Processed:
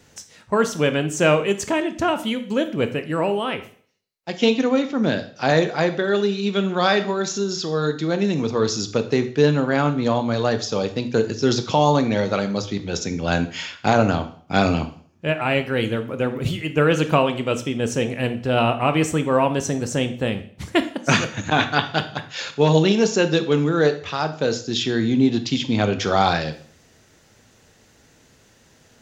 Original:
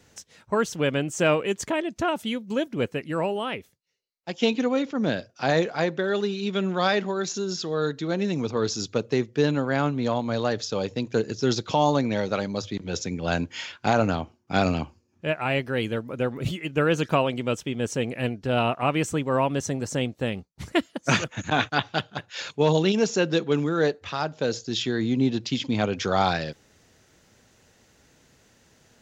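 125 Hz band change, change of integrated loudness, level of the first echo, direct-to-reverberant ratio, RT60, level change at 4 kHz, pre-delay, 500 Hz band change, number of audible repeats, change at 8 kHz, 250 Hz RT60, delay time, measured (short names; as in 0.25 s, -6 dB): +5.0 dB, +4.5 dB, none, 9.0 dB, 0.50 s, +4.5 dB, 15 ms, +4.5 dB, none, +4.5 dB, 0.50 s, none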